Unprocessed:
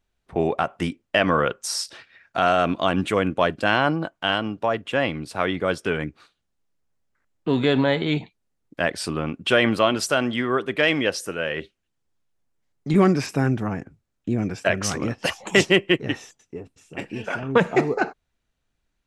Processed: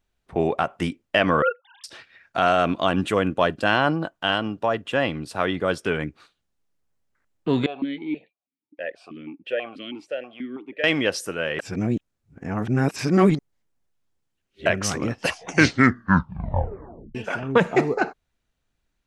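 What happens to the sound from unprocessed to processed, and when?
1.42–1.84 s: formants replaced by sine waves
2.87–5.74 s: band-stop 2.2 kHz
7.66–10.84 s: stepped vowel filter 6.2 Hz
11.59–14.66 s: reverse
15.23 s: tape stop 1.92 s

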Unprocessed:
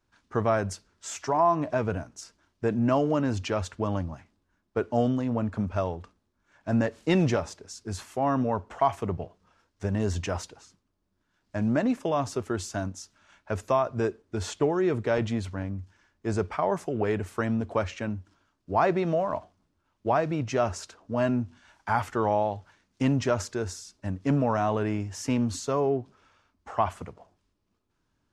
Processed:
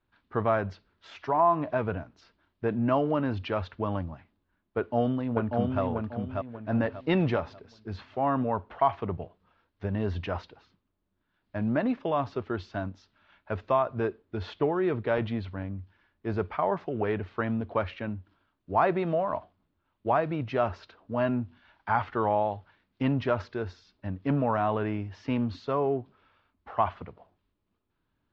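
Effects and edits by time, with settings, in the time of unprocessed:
4.77–5.82 s: echo throw 590 ms, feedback 35%, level -3 dB
whole clip: dynamic bell 1.1 kHz, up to +3 dB, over -34 dBFS, Q 0.89; steep low-pass 4.1 kHz 36 dB/octave; trim -2.5 dB

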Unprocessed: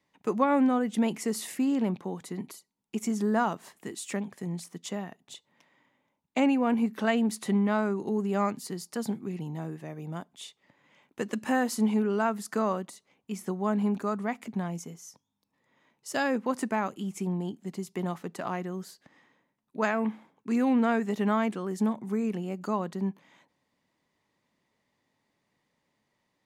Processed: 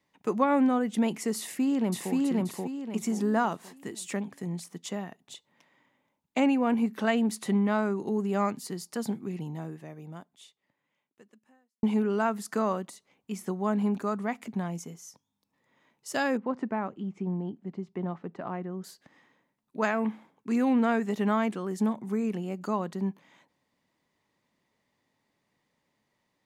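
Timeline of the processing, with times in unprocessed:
1.39–2.14 s: echo throw 530 ms, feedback 35%, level -0.5 dB
9.42–11.83 s: fade out quadratic
16.37–18.84 s: tape spacing loss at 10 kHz 36 dB

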